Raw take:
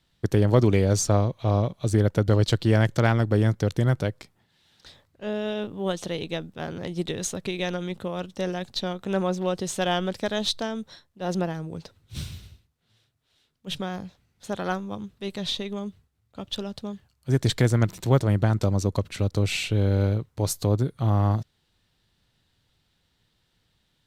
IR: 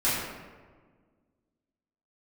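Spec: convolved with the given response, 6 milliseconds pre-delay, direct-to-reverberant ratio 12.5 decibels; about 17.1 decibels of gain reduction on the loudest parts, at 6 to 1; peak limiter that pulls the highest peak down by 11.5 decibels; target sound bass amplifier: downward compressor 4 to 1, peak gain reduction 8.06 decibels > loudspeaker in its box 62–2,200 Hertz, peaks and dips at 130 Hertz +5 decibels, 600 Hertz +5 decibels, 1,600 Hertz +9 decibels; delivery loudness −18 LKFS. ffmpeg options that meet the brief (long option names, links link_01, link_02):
-filter_complex "[0:a]acompressor=threshold=-34dB:ratio=6,alimiter=level_in=8dB:limit=-24dB:level=0:latency=1,volume=-8dB,asplit=2[link_01][link_02];[1:a]atrim=start_sample=2205,adelay=6[link_03];[link_02][link_03]afir=irnorm=-1:irlink=0,volume=-25.5dB[link_04];[link_01][link_04]amix=inputs=2:normalize=0,acompressor=threshold=-44dB:ratio=4,highpass=frequency=62:width=0.5412,highpass=frequency=62:width=1.3066,equalizer=frequency=130:width_type=q:width=4:gain=5,equalizer=frequency=600:width_type=q:width=4:gain=5,equalizer=frequency=1600:width_type=q:width=4:gain=9,lowpass=frequency=2200:width=0.5412,lowpass=frequency=2200:width=1.3066,volume=29dB"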